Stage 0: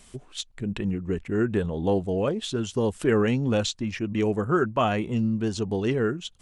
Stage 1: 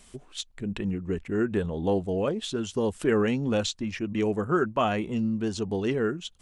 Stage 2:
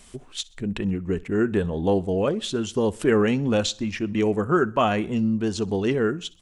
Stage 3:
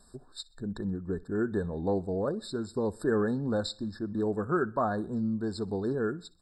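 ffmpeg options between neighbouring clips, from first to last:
ffmpeg -i in.wav -af "equalizer=frequency=120:width=4.6:gain=-7,volume=-1.5dB" out.wav
ffmpeg -i in.wav -af "aecho=1:1:63|126|189:0.0708|0.0347|0.017,volume=4dB" out.wav
ffmpeg -i in.wav -af "afftfilt=real='re*eq(mod(floor(b*sr/1024/1800),2),0)':imag='im*eq(mod(floor(b*sr/1024/1800),2),0)':win_size=1024:overlap=0.75,volume=-7.5dB" out.wav

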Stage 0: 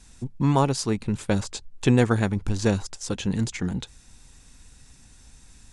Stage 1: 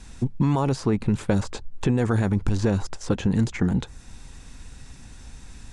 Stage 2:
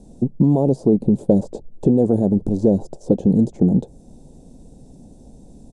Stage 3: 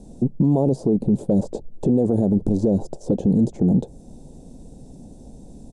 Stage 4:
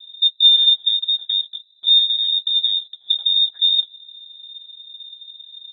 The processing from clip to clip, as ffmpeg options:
ffmpeg -i in.wav -filter_complex "[0:a]highshelf=frequency=5000:gain=-10.5,alimiter=limit=-16.5dB:level=0:latency=1:release=17,acrossover=split=2000|5100[link_01][link_02][link_03];[link_01]acompressor=threshold=-27dB:ratio=4[link_04];[link_02]acompressor=threshold=-56dB:ratio=4[link_05];[link_03]acompressor=threshold=-53dB:ratio=4[link_06];[link_04][link_05][link_06]amix=inputs=3:normalize=0,volume=9dB" out.wav
ffmpeg -i in.wav -af "firequalizer=gain_entry='entry(100,0);entry(160,12);entry(620,14);entry(1200,-19);entry(2000,-25);entry(3600,-11);entry(8800,-2)':delay=0.05:min_phase=1,volume=-4.5dB" out.wav
ffmpeg -i in.wav -af "alimiter=limit=-12dB:level=0:latency=1:release=26,volume=2dB" out.wav
ffmpeg -i in.wav -filter_complex "[0:a]asplit=2[link_01][link_02];[link_02]asoftclip=type=tanh:threshold=-20dB,volume=-4.5dB[link_03];[link_01][link_03]amix=inputs=2:normalize=0,asplit=3[link_04][link_05][link_06];[link_04]bandpass=frequency=270:width_type=q:width=8,volume=0dB[link_07];[link_05]bandpass=frequency=2290:width_type=q:width=8,volume=-6dB[link_08];[link_06]bandpass=frequency=3010:width_type=q:width=8,volume=-9dB[link_09];[link_07][link_08][link_09]amix=inputs=3:normalize=0,lowpass=frequency=3300:width_type=q:width=0.5098,lowpass=frequency=3300:width_type=q:width=0.6013,lowpass=frequency=3300:width_type=q:width=0.9,lowpass=frequency=3300:width_type=q:width=2.563,afreqshift=-3900,volume=8.5dB" out.wav

